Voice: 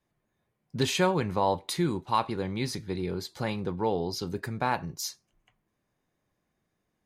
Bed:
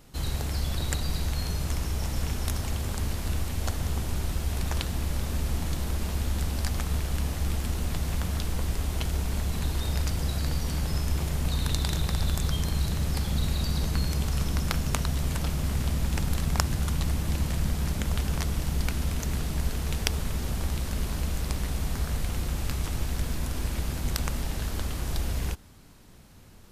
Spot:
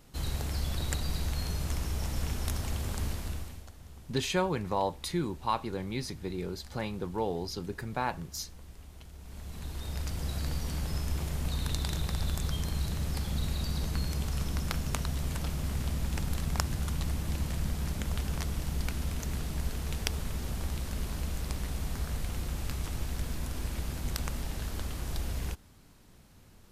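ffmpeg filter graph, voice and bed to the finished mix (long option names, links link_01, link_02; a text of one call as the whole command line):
ffmpeg -i stem1.wav -i stem2.wav -filter_complex "[0:a]adelay=3350,volume=-4dB[link_01];[1:a]volume=12dB,afade=type=out:start_time=3.06:duration=0.6:silence=0.141254,afade=type=in:start_time=9.18:duration=1.21:silence=0.16788[link_02];[link_01][link_02]amix=inputs=2:normalize=0" out.wav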